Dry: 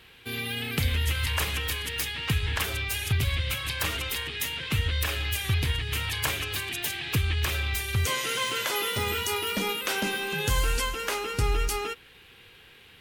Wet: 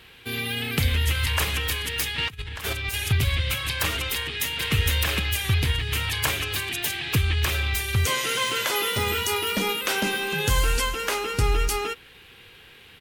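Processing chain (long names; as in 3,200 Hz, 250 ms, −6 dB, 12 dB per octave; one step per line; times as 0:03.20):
0:02.18–0:02.94: compressor whose output falls as the input rises −33 dBFS, ratio −0.5
0:04.13–0:04.73: delay throw 460 ms, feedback 15%, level −1.5 dB
level +3.5 dB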